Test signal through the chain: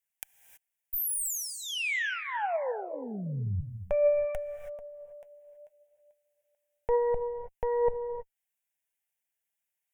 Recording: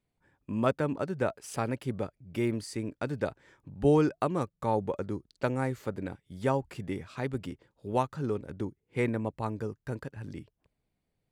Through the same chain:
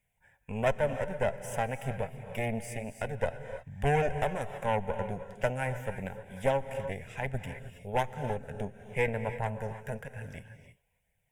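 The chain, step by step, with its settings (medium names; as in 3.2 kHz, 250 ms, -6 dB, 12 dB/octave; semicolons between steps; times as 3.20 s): Chebyshev shaper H 6 -15 dB, 7 -39 dB, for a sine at -13 dBFS; static phaser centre 1.2 kHz, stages 6; flange 0.27 Hz, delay 0.4 ms, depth 6.6 ms, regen +67%; gated-style reverb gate 350 ms rising, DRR 10.5 dB; tape noise reduction on one side only encoder only; trim +6 dB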